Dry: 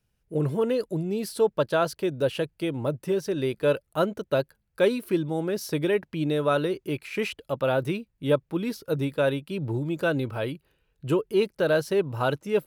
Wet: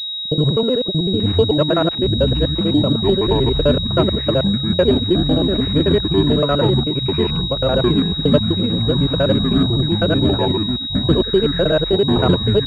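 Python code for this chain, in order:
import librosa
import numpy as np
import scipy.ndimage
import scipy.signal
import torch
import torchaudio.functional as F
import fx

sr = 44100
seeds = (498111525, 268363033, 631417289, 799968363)

y = fx.local_reverse(x, sr, ms=63.0)
y = fx.low_shelf(y, sr, hz=240.0, db=8.0)
y = fx.notch(y, sr, hz=860.0, q=12.0)
y = fx.echo_pitch(y, sr, ms=664, semitones=-7, count=3, db_per_echo=-3.0)
y = fx.pwm(y, sr, carrier_hz=3800.0)
y = F.gain(torch.from_numpy(y), 5.0).numpy()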